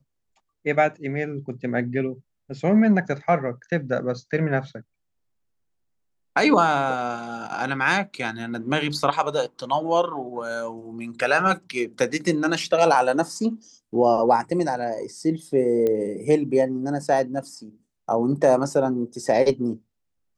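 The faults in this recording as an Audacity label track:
15.870000	15.870000	click −14 dBFS

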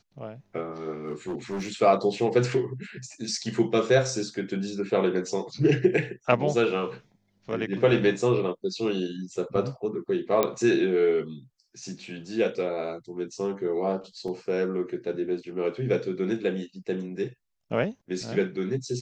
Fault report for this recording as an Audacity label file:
1.050000	1.690000	clipping −27.5 dBFS
10.430000	10.430000	click −9 dBFS
14.280000	14.280000	drop-out 3 ms

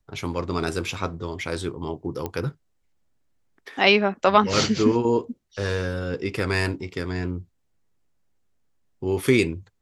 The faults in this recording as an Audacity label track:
2.260000	2.260000	click −15 dBFS

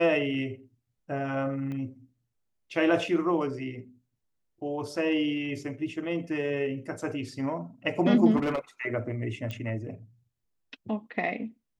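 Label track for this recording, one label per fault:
1.720000	1.720000	click −27 dBFS
8.360000	8.590000	clipping −24 dBFS
9.510000	9.510000	click −22 dBFS

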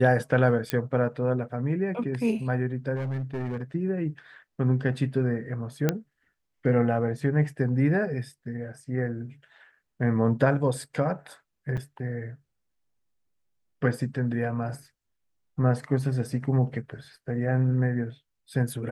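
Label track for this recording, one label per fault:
0.700000	0.700000	click −11 dBFS
2.950000	3.620000	clipping −27 dBFS
5.890000	5.890000	click −9 dBFS
11.770000	11.780000	drop-out 6.6 ms

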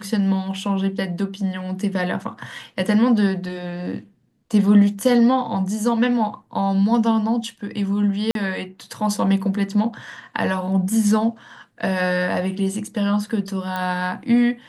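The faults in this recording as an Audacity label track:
8.310000	8.350000	drop-out 42 ms
13.760000	13.760000	click −13 dBFS

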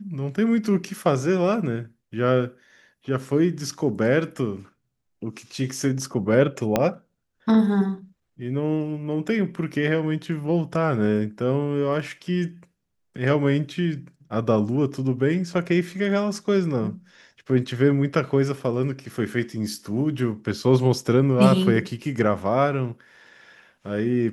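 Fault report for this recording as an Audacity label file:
6.760000	6.760000	click −6 dBFS

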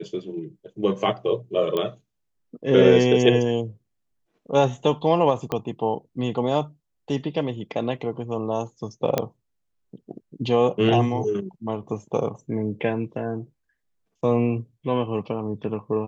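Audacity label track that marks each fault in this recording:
1.770000	1.770000	click −14 dBFS
5.520000	5.520000	click −13 dBFS
9.180000	9.180000	click −7 dBFS

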